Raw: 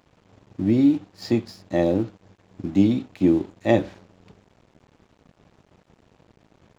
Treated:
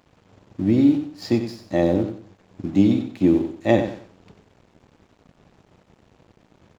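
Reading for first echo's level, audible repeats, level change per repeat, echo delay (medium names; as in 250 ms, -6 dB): -9.0 dB, 3, -11.0 dB, 93 ms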